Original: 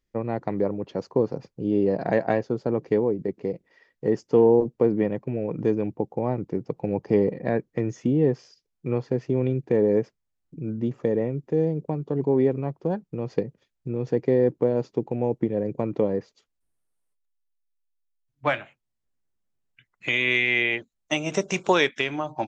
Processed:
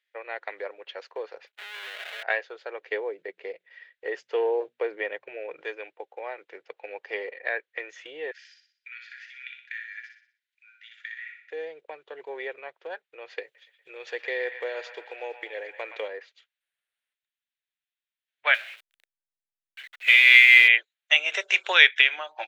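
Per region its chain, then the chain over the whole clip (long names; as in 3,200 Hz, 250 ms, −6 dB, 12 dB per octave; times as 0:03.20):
0:01.47–0:02.23: each half-wave held at its own peak + comb filter 4.8 ms, depth 61% + tube saturation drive 36 dB, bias 0.65
0:02.87–0:05.61: low-shelf EQ 460 Hz +9 dB + mains-hum notches 60/120/180/240 Hz
0:08.31–0:11.51: Chebyshev high-pass with heavy ripple 1,400 Hz, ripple 3 dB + repeating echo 61 ms, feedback 45%, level −5 dB
0:13.43–0:16.08: high-shelf EQ 3,200 Hz +11 dB + delay with a band-pass on its return 119 ms, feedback 67%, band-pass 1,600 Hz, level −8 dB
0:18.54–0:20.68: converter with a step at zero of −25 dBFS + expander for the loud parts 2.5 to 1, over −31 dBFS
whole clip: inverse Chebyshev high-pass filter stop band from 250 Hz, stop band 40 dB; flat-topped bell 2,400 Hz +16 dB; level −6.5 dB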